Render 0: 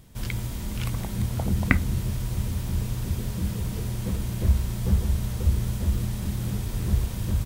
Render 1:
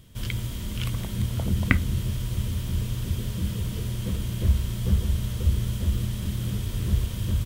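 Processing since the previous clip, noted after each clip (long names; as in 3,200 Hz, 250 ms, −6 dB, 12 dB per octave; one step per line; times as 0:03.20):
thirty-one-band graphic EQ 100 Hz +5 dB, 800 Hz −8 dB, 3,150 Hz +8 dB
level −1 dB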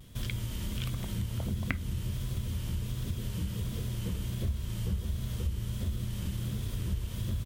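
pitch vibrato 1.4 Hz 74 cents
downward compressor 3 to 1, threshold −32 dBFS, peak gain reduction 14 dB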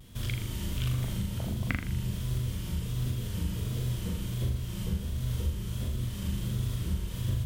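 flutter between parallel walls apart 6.9 metres, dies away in 0.55 s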